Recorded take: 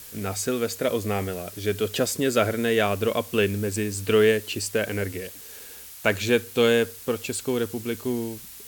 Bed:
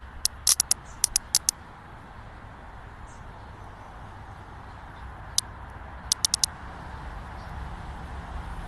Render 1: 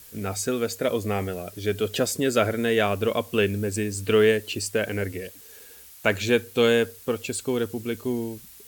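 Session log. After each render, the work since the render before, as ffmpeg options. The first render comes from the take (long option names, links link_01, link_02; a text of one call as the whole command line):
ffmpeg -i in.wav -af "afftdn=noise_reduction=6:noise_floor=-43" out.wav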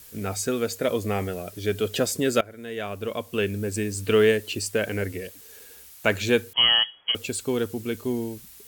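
ffmpeg -i in.wav -filter_complex "[0:a]asettb=1/sr,asplit=3[link_01][link_02][link_03];[link_01]atrim=end=6.534[link_04];[link_02]atrim=start=6.53:end=7.15,asetpts=PTS-STARTPTS,afade=type=in:duration=0.004:curve=qsin,afade=type=out:start_time=0.616:duration=0.004:curve=qsin,lowpass=frequency=2900:width_type=q:width=0.5098,lowpass=frequency=2900:width_type=q:width=0.6013,lowpass=frequency=2900:width_type=q:width=0.9,lowpass=frequency=2900:width_type=q:width=2.563,afreqshift=-3400[link_05];[link_03]atrim=start=7.146[link_06];[link_04][link_05]acrossfade=duration=0.004:curve1=hsin:curve2=qsin[link_07];[link_07][link_06]acrossfade=duration=0.004:curve1=qsin:curve2=hsin,asplit=2[link_08][link_09];[link_08]atrim=end=2.41,asetpts=PTS-STARTPTS,afade=type=out:start_time=2.406:duration=0.004:curve=hsin:silence=0.0749894[link_10];[link_09]atrim=start=2.41,asetpts=PTS-STARTPTS,afade=type=in:duration=1.49:silence=0.0749894[link_11];[link_10][link_11]concat=n=2:v=0:a=1" out.wav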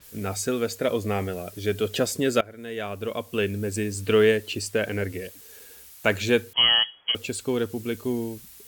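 ffmpeg -i in.wav -af "adynamicequalizer=threshold=0.00708:dfrequency=6000:dqfactor=0.7:tfrequency=6000:tqfactor=0.7:attack=5:release=100:ratio=0.375:range=2:mode=cutabove:tftype=highshelf" out.wav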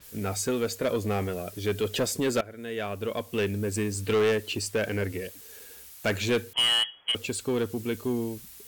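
ffmpeg -i in.wav -af "asoftclip=type=tanh:threshold=-19.5dB" out.wav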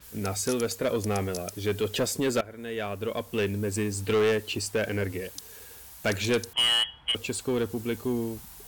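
ffmpeg -i in.wav -i bed.wav -filter_complex "[1:a]volume=-17.5dB[link_01];[0:a][link_01]amix=inputs=2:normalize=0" out.wav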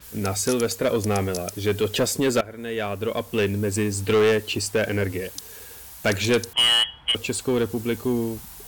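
ffmpeg -i in.wav -af "volume=5dB" out.wav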